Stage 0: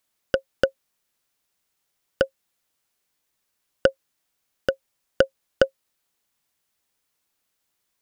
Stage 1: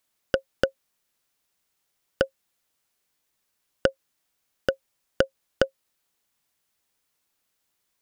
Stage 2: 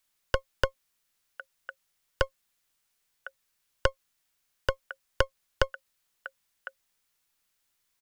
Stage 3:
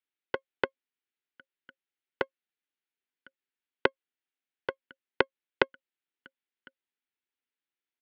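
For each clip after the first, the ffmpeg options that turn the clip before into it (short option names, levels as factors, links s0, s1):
-af "acompressor=threshold=0.141:ratio=4"
-filter_complex "[0:a]acrossover=split=120|1100|1900[s0][s1][s2][s3];[s1]aeval=exprs='max(val(0),0)':c=same[s4];[s2]aecho=1:1:1055:0.531[s5];[s0][s4][s5][s3]amix=inputs=4:normalize=0"
-af "aeval=exprs='0.501*(cos(1*acos(clip(val(0)/0.501,-1,1)))-cos(1*PI/2))+0.112*(cos(2*acos(clip(val(0)/0.501,-1,1)))-cos(2*PI/2))+0.251*(cos(3*acos(clip(val(0)/0.501,-1,1)))-cos(3*PI/2))+0.0708*(cos(5*acos(clip(val(0)/0.501,-1,1)))-cos(5*PI/2))+0.0282*(cos(6*acos(clip(val(0)/0.501,-1,1)))-cos(6*PI/2))':c=same,highpass=260,equalizer=f=260:t=q:w=4:g=7,equalizer=f=380:t=q:w=4:g=6,equalizer=f=620:t=q:w=4:g=-8,equalizer=f=1100:t=q:w=4:g=-8,lowpass=f=3400:w=0.5412,lowpass=f=3400:w=1.3066,volume=1.26"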